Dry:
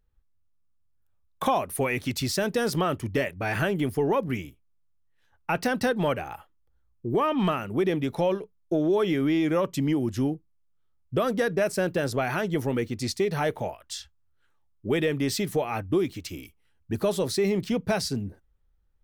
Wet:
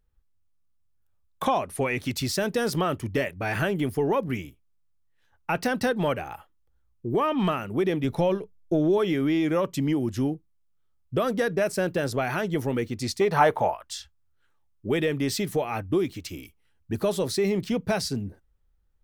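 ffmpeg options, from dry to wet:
ffmpeg -i in.wav -filter_complex "[0:a]asettb=1/sr,asplit=3[link_01][link_02][link_03];[link_01]atrim=end=1.454[link_04];[link_02]atrim=start=1.45:end=1.99,asetpts=PTS-STARTPTS,afade=type=in:duration=0.004:curve=qsin,afade=type=out:start_time=0.536:duration=0.004:curve=qsin,lowpass=8700[link_05];[link_03]atrim=start=1.986[link_06];[link_04][link_05]acrossfade=duration=0.004:curve1=hsin:curve2=qsin[link_07];[link_07][link_06]acrossfade=duration=0.004:curve1=qsin:curve2=hsin,asettb=1/sr,asplit=3[link_08][link_09][link_10];[link_08]atrim=end=8.044[link_11];[link_09]atrim=start=8.04:end=8.98,asetpts=PTS-STARTPTS,afade=type=in:duration=0.004:curve=qsin,afade=type=out:start_time=0.936:duration=0.004:curve=qsin,lowshelf=frequency=130:gain=10.5[link_12];[link_10]atrim=start=8.976[link_13];[link_11][link_12]acrossfade=duration=0.004:curve1=hsin:curve2=qsin[link_14];[link_14][link_13]acrossfade=duration=0.004:curve1=qsin:curve2=hsin,asettb=1/sr,asplit=3[link_15][link_16][link_17];[link_15]atrim=end=13.214[link_18];[link_16]atrim=start=13.21:end=13.84,asetpts=PTS-STARTPTS,afade=type=in:duration=0.004:curve=qsin,afade=type=out:start_time=0.626:duration=0.004:curve=qsin,equalizer=frequency=980:width=0.93:gain=12.5[link_19];[link_17]atrim=start=13.836[link_20];[link_18][link_19]acrossfade=duration=0.004:curve1=hsin:curve2=qsin[link_21];[link_21][link_20]acrossfade=duration=0.004:curve1=qsin:curve2=hsin" out.wav

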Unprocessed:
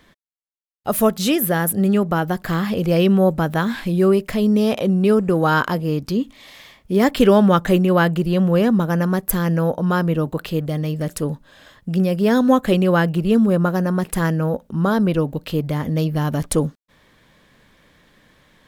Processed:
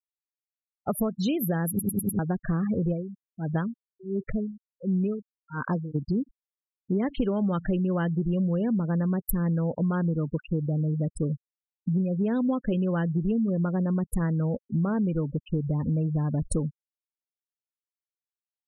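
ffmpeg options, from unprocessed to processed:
ffmpeg -i in.wav -filter_complex "[0:a]asplit=3[link_01][link_02][link_03];[link_01]afade=type=out:start_time=2.92:duration=0.02[link_04];[link_02]aeval=exprs='val(0)*pow(10,-30*(0.5-0.5*cos(2*PI*1.4*n/s))/20)':channel_layout=same,afade=type=in:start_time=2.92:duration=0.02,afade=type=out:start_time=5.94:duration=0.02[link_05];[link_03]afade=type=in:start_time=5.94:duration=0.02[link_06];[link_04][link_05][link_06]amix=inputs=3:normalize=0,asplit=6[link_07][link_08][link_09][link_10][link_11][link_12];[link_07]atrim=end=1.792[link_13];[link_08]atrim=start=1.688:end=1.792[link_14];[link_09]atrim=start=1.688:end=1.792[link_15];[link_10]atrim=start=1.688:end=1.792[link_16];[link_11]atrim=start=1.688:end=1.792[link_17];[link_12]atrim=start=2.188[link_18];[link_13][link_14]acrossfade=duration=0.004:curve1=hsin:curve2=hsin[link_19];[link_19][link_15]acrossfade=duration=0.004:curve1=hsin:curve2=hsin[link_20];[link_20][link_16]acrossfade=duration=0.004:curve1=hsin:curve2=hsin[link_21];[link_21][link_17]acrossfade=duration=0.004:curve1=hsin:curve2=hsin[link_22];[link_22][link_18]acrossfade=duration=0.004:curve1=hsin:curve2=hsin,afftfilt=real='re*gte(hypot(re,im),0.1)':imag='im*gte(hypot(re,im),0.1)':win_size=1024:overlap=0.75,lowshelf=frequency=300:gain=10.5,acompressor=threshold=-15dB:ratio=10,volume=-7.5dB" out.wav

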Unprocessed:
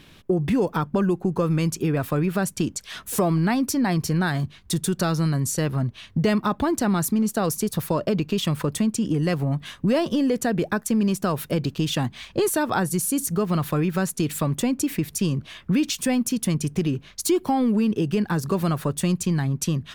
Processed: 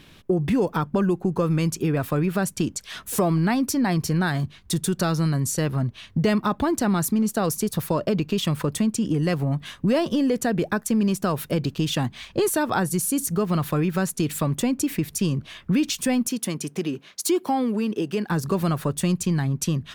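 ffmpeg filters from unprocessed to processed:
ffmpeg -i in.wav -filter_complex "[0:a]asettb=1/sr,asplit=3[link_01][link_02][link_03];[link_01]atrim=end=16.274[link_04];[link_02]atrim=start=16.27:end=18.3,asetpts=PTS-STARTPTS,afade=type=in:duration=0.004:curve=qsin,afade=type=out:start_time=2.026:duration=0.004:curve=qsin,highpass=250[link_05];[link_03]atrim=start=18.296[link_06];[link_04][link_05]acrossfade=duration=0.004:curve1=hsin:curve2=qsin[link_07];[link_07][link_06]acrossfade=duration=0.004:curve1=qsin:curve2=hsin" out.wav

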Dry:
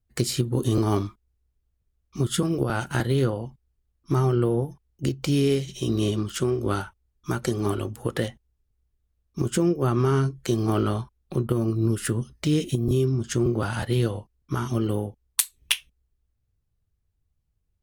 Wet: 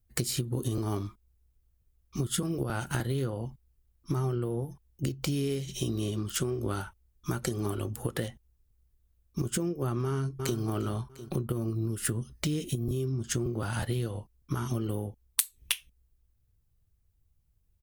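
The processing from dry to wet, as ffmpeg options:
ffmpeg -i in.wav -filter_complex "[0:a]asplit=2[link_01][link_02];[link_02]afade=type=in:start_time=10.04:duration=0.01,afade=type=out:start_time=10.58:duration=0.01,aecho=0:1:350|700|1050:0.251189|0.0753566|0.022607[link_03];[link_01][link_03]amix=inputs=2:normalize=0,lowshelf=frequency=130:gain=4.5,acompressor=threshold=-28dB:ratio=6,highshelf=frequency=10000:gain=11.5" out.wav

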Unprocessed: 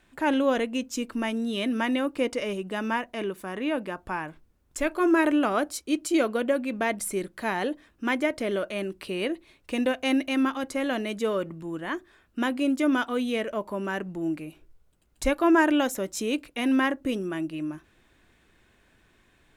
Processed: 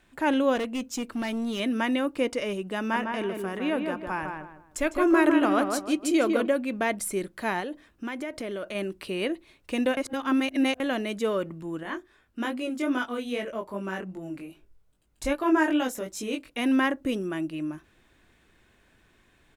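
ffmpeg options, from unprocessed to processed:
ffmpeg -i in.wav -filter_complex "[0:a]asettb=1/sr,asplit=3[link_01][link_02][link_03];[link_01]atrim=end=0.564[link_04];[link_02]atrim=start=0.56:end=1.6,asetpts=PTS-STARTPTS,afade=type=in:duration=0.004:curve=qsin,afade=type=out:start_time=1.036:duration=0.004:curve=qsin,volume=26dB,asoftclip=hard,volume=-26dB[link_05];[link_03]atrim=start=1.596[link_06];[link_04][link_05]acrossfade=duration=0.004:curve1=hsin:curve2=qsin[link_07];[link_07][link_06]acrossfade=duration=0.004:curve1=qsin:curve2=hsin,asplit=3[link_08][link_09][link_10];[link_08]afade=type=out:start_time=2.92:duration=0.02[link_11];[link_09]asplit=2[link_12][link_13];[link_13]adelay=154,lowpass=frequency=2100:poles=1,volume=-4dB,asplit=2[link_14][link_15];[link_15]adelay=154,lowpass=frequency=2100:poles=1,volume=0.32,asplit=2[link_16][link_17];[link_17]adelay=154,lowpass=frequency=2100:poles=1,volume=0.32,asplit=2[link_18][link_19];[link_19]adelay=154,lowpass=frequency=2100:poles=1,volume=0.32[link_20];[link_12][link_14][link_16][link_18][link_20]amix=inputs=5:normalize=0,afade=type=in:start_time=2.92:duration=0.02,afade=type=out:start_time=6.46:duration=0.02[link_21];[link_10]afade=type=in:start_time=6.46:duration=0.02[link_22];[link_11][link_21][link_22]amix=inputs=3:normalize=0,asettb=1/sr,asplit=3[link_23][link_24][link_25];[link_23]atrim=end=7.604[link_26];[link_24]atrim=start=7.6:end=8.75,asetpts=PTS-STARTPTS,afade=type=in:duration=0.004:curve=qsin,afade=type=out:start_time=1.146:duration=0.004:curve=qsin,acompressor=threshold=-30dB:ratio=6:attack=3.2:release=140:knee=1:detection=peak[link_27];[link_25]atrim=start=8.746[link_28];[link_26][link_27]acrossfade=duration=0.004:curve1=hsin:curve2=qsin[link_29];[link_29][link_28]acrossfade=duration=0.004:curve1=qsin:curve2=hsin,asettb=1/sr,asplit=3[link_30][link_31][link_32];[link_30]atrim=end=11.834[link_33];[link_31]atrim=start=11.83:end=16.5,asetpts=PTS-STARTPTS,afade=type=in:duration=0.004:curve=qsin,afade=type=out:start_time=4.666:duration=0.004:curve=qsin,flanger=delay=19.5:depth=2.9:speed=2.5[link_34];[link_32]atrim=start=16.496[link_35];[link_33][link_34]acrossfade=duration=0.004:curve1=hsin:curve2=qsin[link_36];[link_36][link_35]acrossfade=duration=0.004:curve1=qsin:curve2=hsin,asplit=3[link_37][link_38][link_39];[link_37]atrim=end=9.972[link_40];[link_38]atrim=start=9.968:end=10.802,asetpts=PTS-STARTPTS,areverse[link_41];[link_39]atrim=start=10.798[link_42];[link_40][link_41]acrossfade=duration=0.004:curve1=hsin:curve2=hsin[link_43];[link_43][link_42]acrossfade=duration=0.004:curve1=hsin:curve2=hsin" out.wav

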